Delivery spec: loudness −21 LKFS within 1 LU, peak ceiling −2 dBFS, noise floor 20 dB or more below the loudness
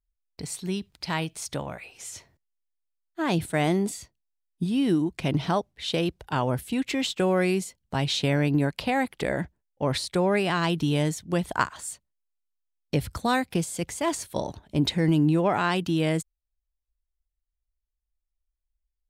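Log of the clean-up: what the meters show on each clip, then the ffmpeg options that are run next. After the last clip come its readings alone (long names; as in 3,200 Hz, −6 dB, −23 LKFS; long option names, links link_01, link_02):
integrated loudness −26.5 LKFS; sample peak −8.0 dBFS; target loudness −21.0 LKFS
→ -af "volume=5.5dB"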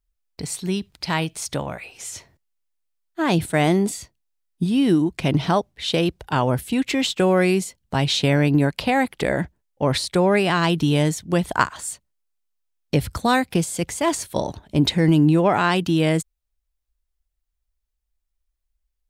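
integrated loudness −21.0 LKFS; sample peak −2.5 dBFS; background noise floor −78 dBFS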